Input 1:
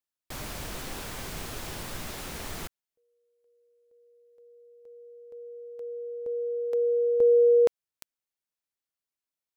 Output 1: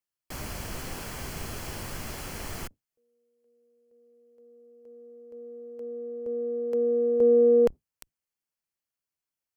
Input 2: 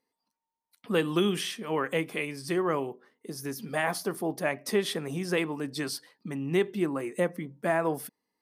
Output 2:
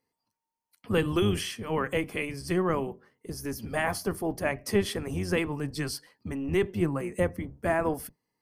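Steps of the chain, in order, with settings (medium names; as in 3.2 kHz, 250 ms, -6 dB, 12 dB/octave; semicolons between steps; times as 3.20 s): octave divider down 1 oct, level -2 dB; band-stop 3.7 kHz, Q 6.2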